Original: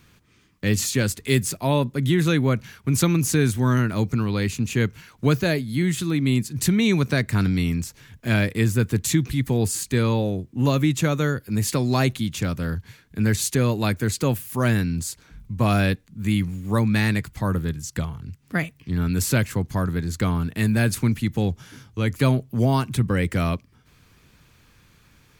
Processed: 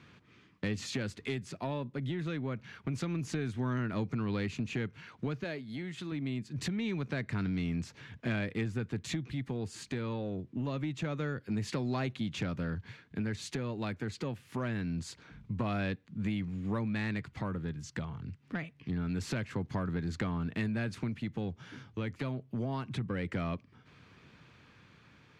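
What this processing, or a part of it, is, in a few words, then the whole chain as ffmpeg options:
AM radio: -filter_complex "[0:a]highpass=110,lowpass=3500,acompressor=threshold=-30dB:ratio=6,asoftclip=type=tanh:threshold=-23dB,tremolo=f=0.25:d=0.27,asettb=1/sr,asplit=3[link_01][link_02][link_03];[link_01]atrim=end=5.444[link_04];[link_02]atrim=start=5.44:end=6.12,asetpts=PTS-STARTPTS,afade=type=in:duration=0.004:curve=qsin,afade=type=out:start_time=0.676:duration=0.004:curve=qsin,lowshelf=frequency=190:gain=-9.5[link_05];[link_03]atrim=start=6.116[link_06];[link_04][link_05]acrossfade=duration=0.004:curve1=hsin:curve2=qsin[link_07];[link_07][link_06]acrossfade=duration=0.004:curve1=qsin:curve2=hsin"

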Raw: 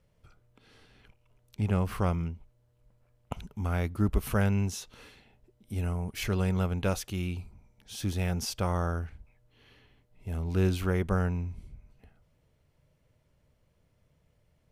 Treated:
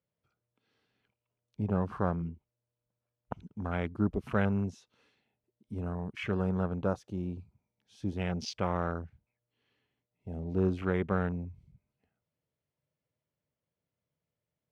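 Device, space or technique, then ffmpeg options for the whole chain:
over-cleaned archive recording: -filter_complex "[0:a]highpass=130,lowpass=6500,afwtdn=0.0112,asettb=1/sr,asplit=3[link_01][link_02][link_03];[link_01]atrim=end=6.844[link_04];[link_02]atrim=start=6.84:end=7.39,asetpts=PTS-STARTPTS,afade=type=in:duration=0.004:curve=qsin,afade=type=out:start_time=0.546:duration=0.004:curve=qsin,equalizer=frequency=2400:width_type=o:width=1.1:gain=-5.5[link_05];[link_03]atrim=start=7.386[link_06];[link_04][link_05]acrossfade=duration=0.004:curve1=hsin:curve2=qsin[link_07];[link_07][link_06]acrossfade=duration=0.004:curve1=qsin:curve2=hsin"

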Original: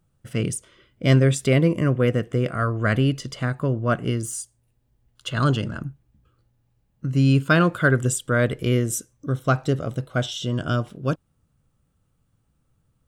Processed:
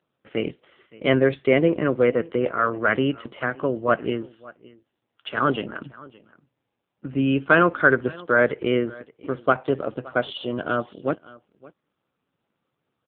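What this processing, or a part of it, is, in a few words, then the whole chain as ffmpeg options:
satellite phone: -af "highpass=330,lowpass=3000,aecho=1:1:568:0.0794,volume=5dB" -ar 8000 -c:a libopencore_amrnb -b:a 5900

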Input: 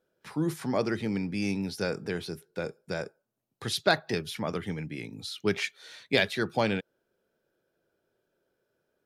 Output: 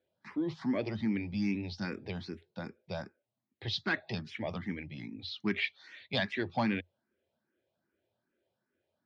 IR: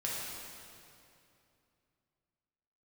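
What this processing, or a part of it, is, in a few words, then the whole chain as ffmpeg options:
barber-pole phaser into a guitar amplifier: -filter_complex "[0:a]asplit=2[link_01][link_02];[link_02]afreqshift=2.5[link_03];[link_01][link_03]amix=inputs=2:normalize=1,asoftclip=type=tanh:threshold=-19dB,highpass=78,equalizer=frequency=88:width_type=q:width=4:gain=8,equalizer=frequency=160:width_type=q:width=4:gain=-4,equalizer=frequency=230:width_type=q:width=4:gain=4,equalizer=frequency=450:width_type=q:width=4:gain=-9,equalizer=frequency=1400:width_type=q:width=4:gain=-7,equalizer=frequency=2000:width_type=q:width=4:gain=4,lowpass=frequency=4400:width=0.5412,lowpass=frequency=4400:width=1.3066"

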